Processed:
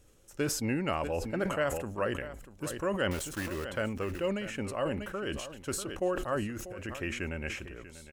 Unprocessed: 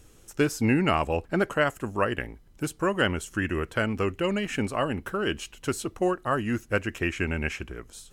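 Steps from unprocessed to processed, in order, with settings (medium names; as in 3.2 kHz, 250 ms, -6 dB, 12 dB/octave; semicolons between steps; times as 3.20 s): 3.11–3.66 s: block-companded coder 3-bit; peaking EQ 550 Hz +8.5 dB 0.21 oct; 6.42–7.03 s: compressor with a negative ratio -30 dBFS, ratio -1; on a send: delay 642 ms -15 dB; on the sum: decay stretcher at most 51 dB/s; trim -9 dB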